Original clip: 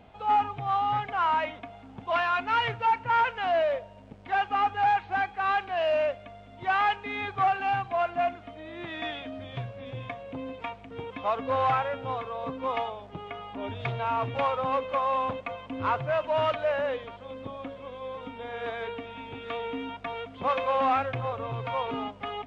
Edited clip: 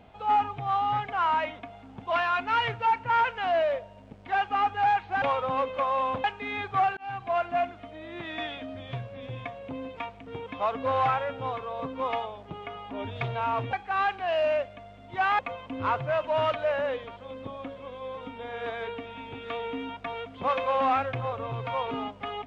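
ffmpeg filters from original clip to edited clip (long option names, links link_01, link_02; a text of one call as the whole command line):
ffmpeg -i in.wav -filter_complex "[0:a]asplit=6[link_01][link_02][link_03][link_04][link_05][link_06];[link_01]atrim=end=5.222[link_07];[link_02]atrim=start=14.368:end=15.392[link_08];[link_03]atrim=start=6.878:end=7.61,asetpts=PTS-STARTPTS,afade=type=out:start_time=0.728:duration=0.004:curve=hsin[link_09];[link_04]atrim=start=7.61:end=14.372,asetpts=PTS-STARTPTS,afade=type=in:duration=0.33[link_10];[link_05]atrim=start=5.218:end=6.882[link_11];[link_06]atrim=start=15.388[link_12];[link_07][link_08]acrossfade=duration=0.004:curve1=hsin:curve2=hsin[link_13];[link_09][link_10]concat=n=2:v=0:a=1[link_14];[link_13][link_14]acrossfade=duration=0.004:curve1=hsin:curve2=hsin[link_15];[link_15][link_11]acrossfade=duration=0.004:curve1=hsin:curve2=hsin[link_16];[link_16][link_12]acrossfade=duration=0.004:curve1=hsin:curve2=hsin" out.wav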